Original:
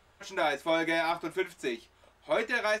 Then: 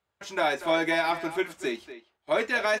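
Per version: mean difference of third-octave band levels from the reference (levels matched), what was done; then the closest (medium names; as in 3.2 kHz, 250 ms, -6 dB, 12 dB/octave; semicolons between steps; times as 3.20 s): 2.0 dB: high-pass 78 Hz; gate -53 dBFS, range -21 dB; speakerphone echo 240 ms, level -12 dB; trim +3 dB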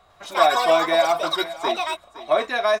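6.0 dB: ever faster or slower copies 101 ms, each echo +7 st, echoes 3; small resonant body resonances 710/1100/3800 Hz, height 16 dB, ringing for 35 ms; on a send: delay 514 ms -16 dB; on the sum: trim +1.5 dB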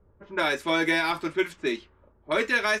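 3.0 dB: level-controlled noise filter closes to 550 Hz, open at -27.5 dBFS; peaking EQ 720 Hz -11.5 dB 0.46 oct; tape noise reduction on one side only decoder only; trim +6.5 dB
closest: first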